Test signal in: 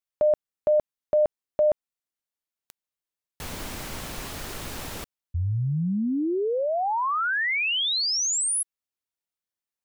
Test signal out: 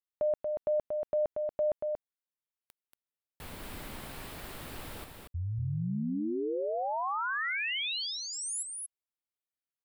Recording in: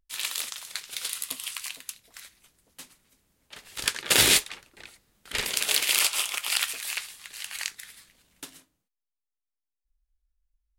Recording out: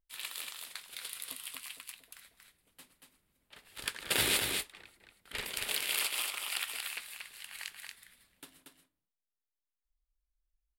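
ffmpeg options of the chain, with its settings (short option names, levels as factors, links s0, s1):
-af "equalizer=f=6200:w=1.9:g=-9.5,aecho=1:1:233:0.596,volume=0.376"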